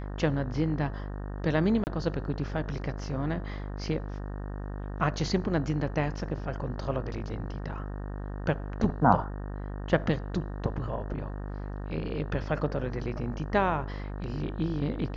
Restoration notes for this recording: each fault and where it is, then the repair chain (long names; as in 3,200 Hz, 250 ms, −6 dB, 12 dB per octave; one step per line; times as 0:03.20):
mains buzz 50 Hz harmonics 37 −36 dBFS
0:01.84–0:01.87: drop-out 29 ms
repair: hum removal 50 Hz, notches 37
repair the gap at 0:01.84, 29 ms